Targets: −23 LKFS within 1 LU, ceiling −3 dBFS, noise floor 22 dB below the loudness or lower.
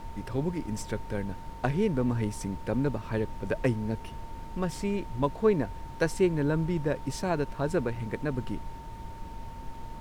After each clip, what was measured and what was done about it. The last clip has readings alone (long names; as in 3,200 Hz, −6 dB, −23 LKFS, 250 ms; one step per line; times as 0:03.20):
interfering tone 910 Hz; level of the tone −45 dBFS; background noise floor −42 dBFS; target noise floor −53 dBFS; integrated loudness −30.5 LKFS; sample peak −13.0 dBFS; target loudness −23.0 LKFS
→ notch filter 910 Hz, Q 30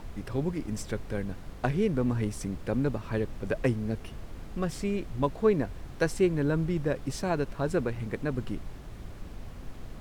interfering tone none found; background noise floor −44 dBFS; target noise floor −53 dBFS
→ noise reduction from a noise print 9 dB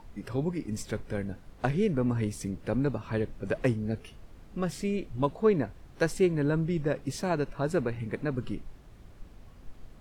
background noise floor −52 dBFS; target noise floor −53 dBFS
→ noise reduction from a noise print 6 dB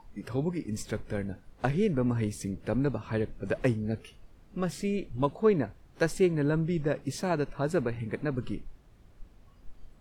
background noise floor −57 dBFS; integrated loudness −31.0 LKFS; sample peak −13.0 dBFS; target loudness −23.0 LKFS
→ level +8 dB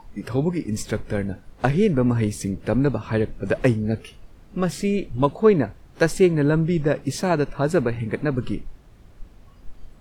integrated loudness −23.0 LKFS; sample peak −5.0 dBFS; background noise floor −49 dBFS